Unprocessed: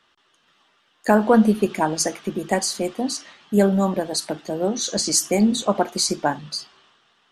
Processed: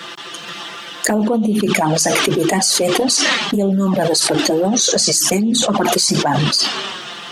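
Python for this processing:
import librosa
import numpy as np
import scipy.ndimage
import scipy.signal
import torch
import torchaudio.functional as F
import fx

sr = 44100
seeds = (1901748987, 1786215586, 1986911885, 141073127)

y = scipy.signal.sosfilt(scipy.signal.butter(2, 140.0, 'highpass', fs=sr, output='sos'), x)
y = fx.peak_eq(y, sr, hz=1200.0, db=-3.5, octaves=2.2)
y = fx.env_flanger(y, sr, rest_ms=5.9, full_db=-13.5)
y = fx.env_flatten(y, sr, amount_pct=100)
y = y * librosa.db_to_amplitude(-3.5)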